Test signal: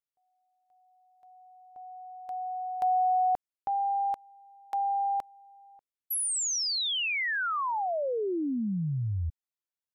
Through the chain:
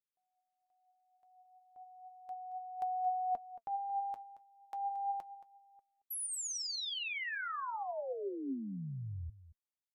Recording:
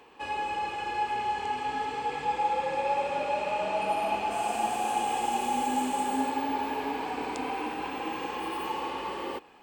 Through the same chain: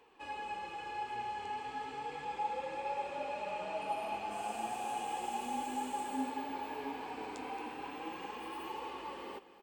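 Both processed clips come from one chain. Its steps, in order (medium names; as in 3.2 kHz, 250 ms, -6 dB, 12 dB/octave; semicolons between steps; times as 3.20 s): flange 0.34 Hz, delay 2 ms, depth 7.9 ms, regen +63%; on a send: delay 225 ms -15.5 dB; on the sum: trim -5.5 dB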